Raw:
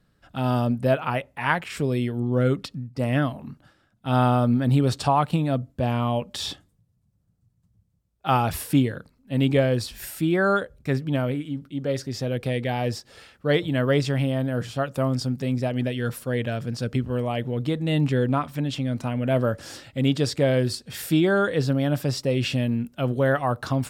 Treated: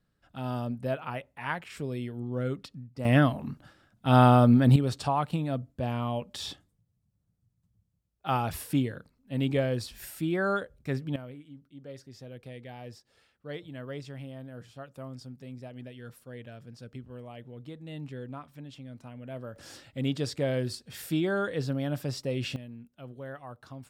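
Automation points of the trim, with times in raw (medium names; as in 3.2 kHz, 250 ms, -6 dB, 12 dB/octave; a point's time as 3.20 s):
-10 dB
from 3.05 s +1.5 dB
from 4.76 s -7 dB
from 11.16 s -18 dB
from 19.56 s -8 dB
from 22.56 s -20 dB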